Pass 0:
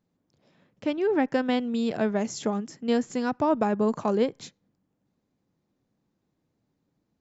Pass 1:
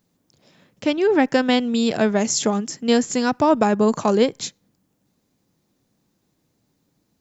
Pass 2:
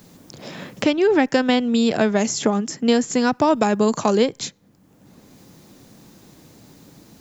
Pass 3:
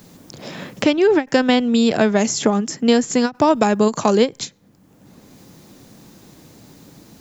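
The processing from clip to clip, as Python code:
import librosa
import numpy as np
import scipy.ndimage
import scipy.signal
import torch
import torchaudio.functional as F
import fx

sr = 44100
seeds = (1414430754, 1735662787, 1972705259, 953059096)

y1 = fx.high_shelf(x, sr, hz=3700.0, db=12.0)
y1 = F.gain(torch.from_numpy(y1), 6.5).numpy()
y2 = fx.band_squash(y1, sr, depth_pct=70)
y3 = fx.end_taper(y2, sr, db_per_s=340.0)
y3 = F.gain(torch.from_numpy(y3), 2.5).numpy()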